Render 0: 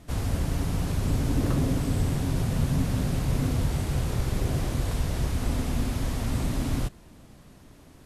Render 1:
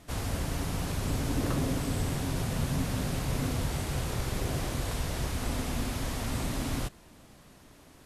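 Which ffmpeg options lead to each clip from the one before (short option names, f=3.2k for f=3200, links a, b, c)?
-af "lowshelf=f=370:g=-7.5,volume=1dB"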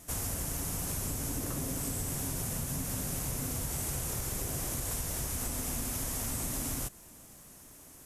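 -af "acompressor=threshold=-32dB:ratio=3,aexciter=amount=5.2:drive=3.8:freq=5.8k,volume=-2.5dB"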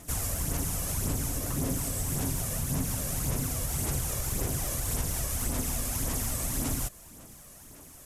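-af "aphaser=in_gain=1:out_gain=1:delay=1.8:decay=0.43:speed=1.8:type=sinusoidal,volume=2dB"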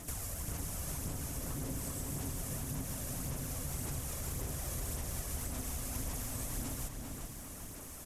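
-filter_complex "[0:a]acompressor=threshold=-42dB:ratio=3,asplit=2[a][b];[b]adelay=396,lowpass=f=4.8k:p=1,volume=-4dB,asplit=2[c][d];[d]adelay=396,lowpass=f=4.8k:p=1,volume=0.51,asplit=2[e][f];[f]adelay=396,lowpass=f=4.8k:p=1,volume=0.51,asplit=2[g][h];[h]adelay=396,lowpass=f=4.8k:p=1,volume=0.51,asplit=2[i][j];[j]adelay=396,lowpass=f=4.8k:p=1,volume=0.51,asplit=2[k][l];[l]adelay=396,lowpass=f=4.8k:p=1,volume=0.51,asplit=2[m][n];[n]adelay=396,lowpass=f=4.8k:p=1,volume=0.51[o];[c][e][g][i][k][m][o]amix=inputs=7:normalize=0[p];[a][p]amix=inputs=2:normalize=0,volume=1dB"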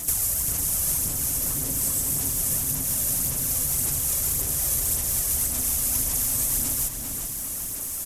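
-af "crystalizer=i=3.5:c=0,volume=5dB"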